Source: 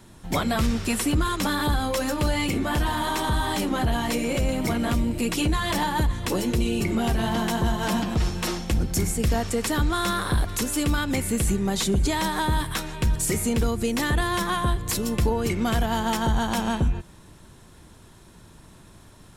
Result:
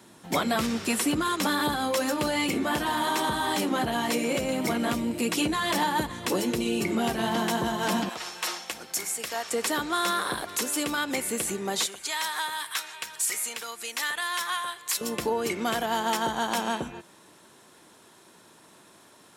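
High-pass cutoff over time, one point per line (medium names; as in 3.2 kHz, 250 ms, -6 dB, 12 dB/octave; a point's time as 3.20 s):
220 Hz
from 8.09 s 790 Hz
from 9.51 s 370 Hz
from 11.86 s 1.2 kHz
from 15.01 s 330 Hz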